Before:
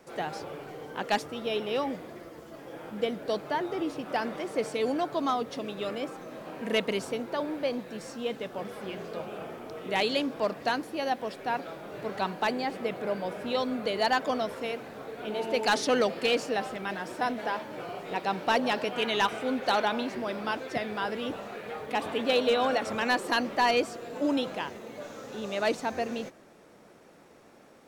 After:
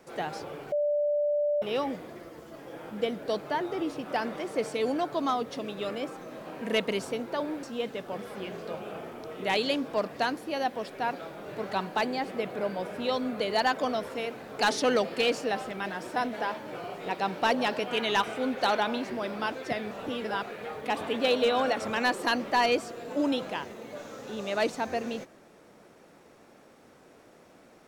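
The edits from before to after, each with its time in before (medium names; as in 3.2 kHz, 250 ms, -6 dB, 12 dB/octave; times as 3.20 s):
0.72–1.62 s: bleep 588 Hz -23.5 dBFS
7.63–8.09 s: delete
15.05–15.64 s: delete
20.96–21.48 s: reverse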